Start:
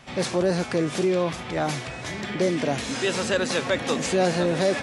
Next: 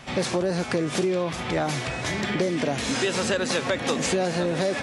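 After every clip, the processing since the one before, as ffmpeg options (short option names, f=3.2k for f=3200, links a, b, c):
-af "acompressor=threshold=-26dB:ratio=6,volume=5dB"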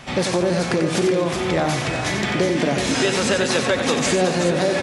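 -af "aecho=1:1:91|235|373:0.447|0.126|0.422,volume=4dB"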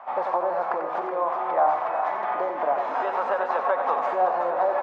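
-af "asuperpass=centerf=890:order=4:qfactor=1.8,volume=6dB"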